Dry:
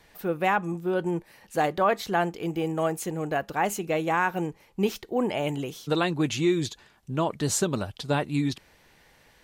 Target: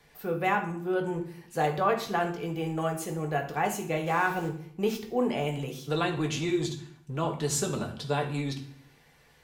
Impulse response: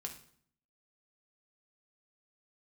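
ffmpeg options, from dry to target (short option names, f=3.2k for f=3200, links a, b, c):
-filter_complex "[0:a]asettb=1/sr,asplit=3[a][b][c];[a]atrim=end=4.064[d];[b]atrim=start=4.06:end=4.49,asetpts=PTS-STARTPTS,afade=t=in:d=0.004:c=qsin,afade=t=out:st=0.426:d=0.004:c=qsin,aeval=exprs='val(0)+0.5*0.015*sgn(val(0))':c=same[e];[c]atrim=start=4.486[f];[d][e]acrossfade=d=0.004:c1=hsin:c2=qsin[g];[g][f]acrossfade=d=0.004:c1=qsin:c2=hsin[h];[1:a]atrim=start_sample=2205,asetrate=42777,aresample=44100[i];[h][i]afir=irnorm=-1:irlink=0,acrossover=split=240[j][k];[j]volume=34.5dB,asoftclip=hard,volume=-34.5dB[l];[l][k]amix=inputs=2:normalize=0"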